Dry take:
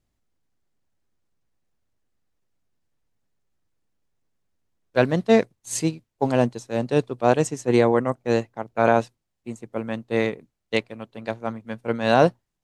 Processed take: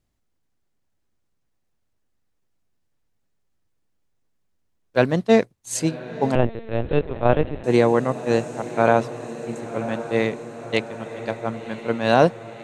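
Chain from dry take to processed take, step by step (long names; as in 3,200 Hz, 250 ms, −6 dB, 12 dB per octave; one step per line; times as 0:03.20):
feedback delay with all-pass diffusion 1,055 ms, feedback 66%, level −13.5 dB
0:06.35–0:07.64: linear-prediction vocoder at 8 kHz pitch kept
level +1 dB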